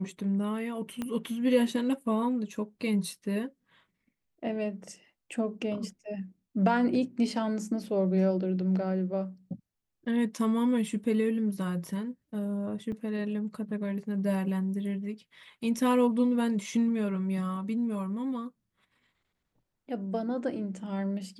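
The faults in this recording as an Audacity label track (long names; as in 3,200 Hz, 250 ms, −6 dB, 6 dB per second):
1.020000	1.020000	click −20 dBFS
12.920000	12.920000	drop-out 4 ms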